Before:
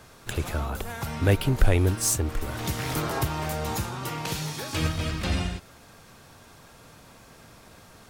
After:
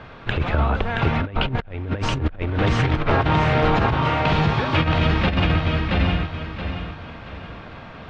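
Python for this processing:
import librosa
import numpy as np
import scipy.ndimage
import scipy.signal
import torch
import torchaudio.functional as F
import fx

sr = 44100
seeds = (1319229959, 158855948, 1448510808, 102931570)

p1 = scipy.signal.sosfilt(scipy.signal.butter(4, 3200.0, 'lowpass', fs=sr, output='sos'), x)
p2 = fx.peak_eq(p1, sr, hz=370.0, db=-3.0, octaves=0.27)
p3 = p2 + fx.echo_feedback(p2, sr, ms=675, feedback_pct=35, wet_db=-3.0, dry=0)
p4 = fx.over_compress(p3, sr, threshold_db=-27.0, ratio=-0.5)
y = F.gain(torch.from_numpy(p4), 8.0).numpy()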